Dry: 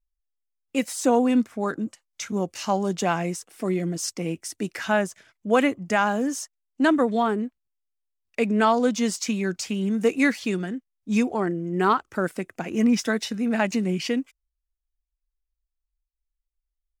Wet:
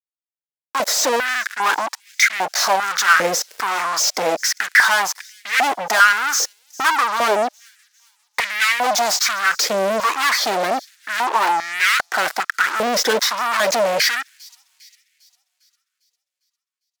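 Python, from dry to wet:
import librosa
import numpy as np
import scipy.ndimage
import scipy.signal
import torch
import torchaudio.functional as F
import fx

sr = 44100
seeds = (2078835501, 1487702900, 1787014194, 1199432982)

y = fx.fixed_phaser(x, sr, hz=2800.0, stages=6)
y = fx.fuzz(y, sr, gain_db=44.0, gate_db=-49.0)
y = fx.echo_wet_highpass(y, sr, ms=402, feedback_pct=49, hz=4900.0, wet_db=-19.0)
y = fx.filter_held_highpass(y, sr, hz=2.5, low_hz=490.0, high_hz=2000.0)
y = y * 10.0 ** (-3.0 / 20.0)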